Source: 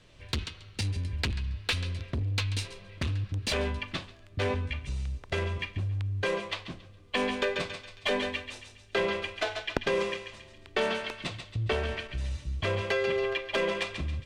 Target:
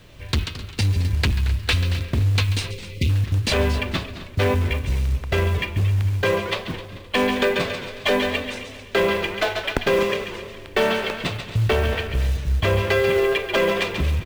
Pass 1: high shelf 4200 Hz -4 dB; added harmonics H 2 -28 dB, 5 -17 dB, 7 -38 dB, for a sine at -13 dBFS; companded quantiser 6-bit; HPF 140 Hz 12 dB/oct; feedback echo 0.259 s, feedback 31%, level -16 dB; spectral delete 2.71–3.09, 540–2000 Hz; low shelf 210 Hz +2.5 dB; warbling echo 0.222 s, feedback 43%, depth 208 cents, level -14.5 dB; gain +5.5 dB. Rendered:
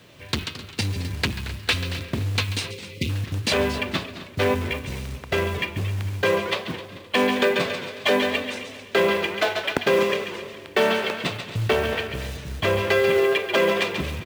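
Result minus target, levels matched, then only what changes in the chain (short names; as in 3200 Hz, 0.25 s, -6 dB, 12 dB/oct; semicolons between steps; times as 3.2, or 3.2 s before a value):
125 Hz band -5.5 dB
remove: HPF 140 Hz 12 dB/oct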